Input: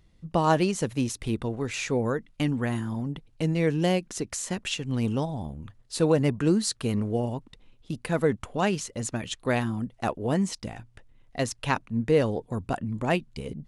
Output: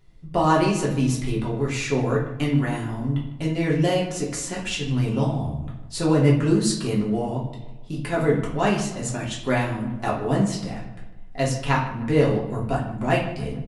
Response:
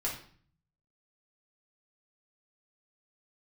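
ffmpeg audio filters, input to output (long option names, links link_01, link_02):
-filter_complex "[0:a]asplit=2[link_01][link_02];[link_02]adelay=152,lowpass=frequency=2500:poles=1,volume=-13.5dB,asplit=2[link_03][link_04];[link_04]adelay=152,lowpass=frequency=2500:poles=1,volume=0.48,asplit=2[link_05][link_06];[link_06]adelay=152,lowpass=frequency=2500:poles=1,volume=0.48,asplit=2[link_07][link_08];[link_08]adelay=152,lowpass=frequency=2500:poles=1,volume=0.48,asplit=2[link_09][link_10];[link_10]adelay=152,lowpass=frequency=2500:poles=1,volume=0.48[link_11];[link_01][link_03][link_05][link_07][link_09][link_11]amix=inputs=6:normalize=0[link_12];[1:a]atrim=start_sample=2205[link_13];[link_12][link_13]afir=irnorm=-1:irlink=0"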